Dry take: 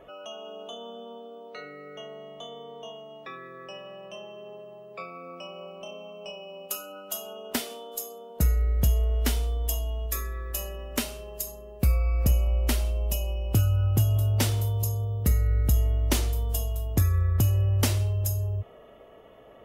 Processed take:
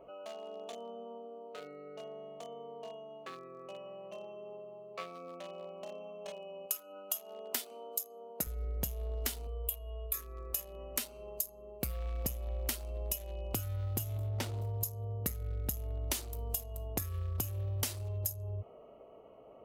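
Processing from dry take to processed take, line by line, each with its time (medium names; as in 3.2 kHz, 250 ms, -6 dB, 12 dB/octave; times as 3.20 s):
6.66–8.47 s: high-pass 220 Hz 6 dB/octave
9.47–10.14 s: static phaser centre 1.2 kHz, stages 8
14.18–14.81 s: low-pass 2 kHz 6 dB/octave
whole clip: local Wiener filter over 25 samples; tilt EQ +2.5 dB/octave; compression 6:1, threshold -33 dBFS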